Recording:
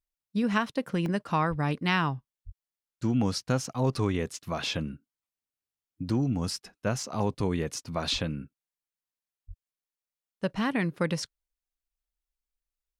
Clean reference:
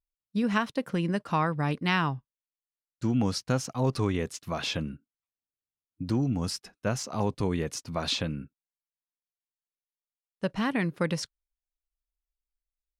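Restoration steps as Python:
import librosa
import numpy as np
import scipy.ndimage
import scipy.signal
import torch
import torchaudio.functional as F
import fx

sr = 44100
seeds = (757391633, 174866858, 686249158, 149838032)

y = fx.fix_deplosive(x, sr, at_s=(1.49, 2.45, 8.12, 9.47))
y = fx.fix_interpolate(y, sr, at_s=(1.06,), length_ms=1.2)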